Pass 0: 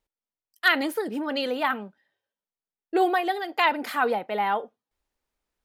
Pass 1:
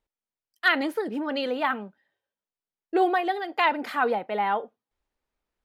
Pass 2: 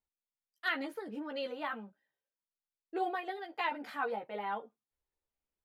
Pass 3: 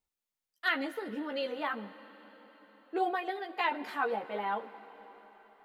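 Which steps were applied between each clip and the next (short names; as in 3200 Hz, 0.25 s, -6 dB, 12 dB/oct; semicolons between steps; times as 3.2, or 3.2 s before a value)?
high shelf 5900 Hz -11.5 dB
chorus voices 4, 0.61 Hz, delay 14 ms, depth 1.2 ms; gain -8.5 dB
reverb RT60 5.1 s, pre-delay 63 ms, DRR 15 dB; gain +3.5 dB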